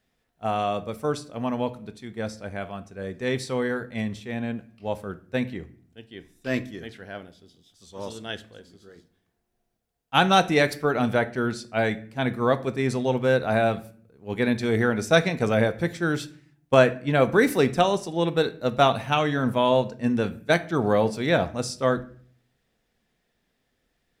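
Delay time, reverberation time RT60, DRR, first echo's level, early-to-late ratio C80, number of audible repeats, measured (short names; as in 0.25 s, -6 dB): none, 0.50 s, 11.0 dB, none, 22.0 dB, none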